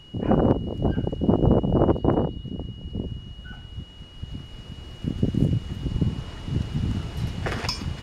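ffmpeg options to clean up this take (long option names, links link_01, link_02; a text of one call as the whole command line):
ffmpeg -i in.wav -af "bandreject=frequency=2900:width=30" out.wav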